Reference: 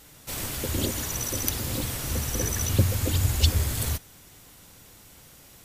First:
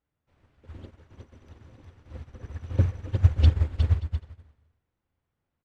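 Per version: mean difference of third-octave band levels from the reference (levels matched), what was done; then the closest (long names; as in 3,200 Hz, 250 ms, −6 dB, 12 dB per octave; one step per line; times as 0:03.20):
19.0 dB: low-pass filter 1,900 Hz 12 dB per octave
parametric band 82 Hz +8 dB 0.44 octaves
bouncing-ball delay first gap 360 ms, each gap 0.6×, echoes 5
expander for the loud parts 2.5 to 1, over −32 dBFS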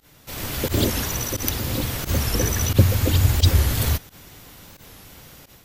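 2.5 dB: fake sidechain pumping 88 BPM, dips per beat 1, −20 dB, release 77 ms
parametric band 8,700 Hz −7.5 dB 0.89 octaves
automatic gain control gain up to 8 dB
wow of a warped record 45 rpm, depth 160 cents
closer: second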